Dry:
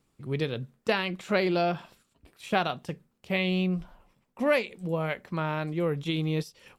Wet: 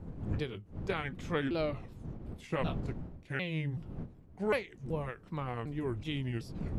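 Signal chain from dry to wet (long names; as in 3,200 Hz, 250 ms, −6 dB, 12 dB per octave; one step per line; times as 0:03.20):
pitch shifter swept by a sawtooth −6 semitones, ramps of 377 ms
wind on the microphone 170 Hz −36 dBFS
every ending faded ahead of time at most 200 dB per second
level −6.5 dB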